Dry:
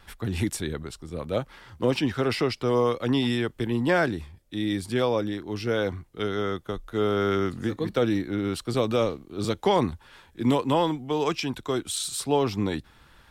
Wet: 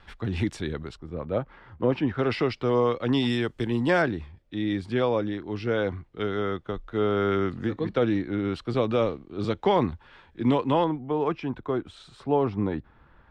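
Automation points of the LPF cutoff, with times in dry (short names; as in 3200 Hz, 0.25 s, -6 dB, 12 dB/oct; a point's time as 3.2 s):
3900 Hz
from 0.97 s 1800 Hz
from 2.19 s 3500 Hz
from 3.13 s 7200 Hz
from 4.02 s 3100 Hz
from 10.84 s 1500 Hz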